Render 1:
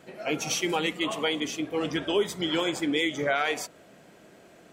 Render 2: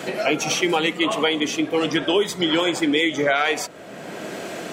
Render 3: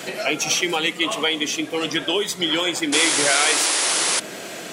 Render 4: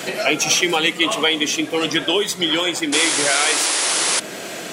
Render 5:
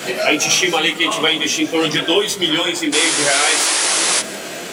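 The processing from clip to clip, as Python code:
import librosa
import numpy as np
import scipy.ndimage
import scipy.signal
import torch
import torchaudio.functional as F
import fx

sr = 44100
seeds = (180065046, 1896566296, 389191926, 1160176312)

y1 = fx.highpass(x, sr, hz=160.0, slope=6)
y1 = fx.high_shelf(y1, sr, hz=8200.0, db=-5.0)
y1 = fx.band_squash(y1, sr, depth_pct=70)
y1 = y1 * 10.0 ** (7.5 / 20.0)
y2 = fx.high_shelf(y1, sr, hz=2000.0, db=9.5)
y2 = fx.dmg_noise_band(y2, sr, seeds[0], low_hz=1700.0, high_hz=11000.0, level_db=-46.0)
y2 = fx.spec_paint(y2, sr, seeds[1], shape='noise', start_s=2.92, length_s=1.28, low_hz=270.0, high_hz=11000.0, level_db=-16.0)
y2 = y2 * 10.0 ** (-4.5 / 20.0)
y3 = fx.rider(y2, sr, range_db=4, speed_s=2.0)
y3 = y3 * 10.0 ** (1.5 / 20.0)
y4 = fx.dmg_crackle(y3, sr, seeds[2], per_s=110.0, level_db=-28.0)
y4 = y4 + 10.0 ** (-18.0 / 20.0) * np.pad(y4, (int(157 * sr / 1000.0), 0))[:len(y4)]
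y4 = fx.detune_double(y4, sr, cents=18)
y4 = y4 * 10.0 ** (6.0 / 20.0)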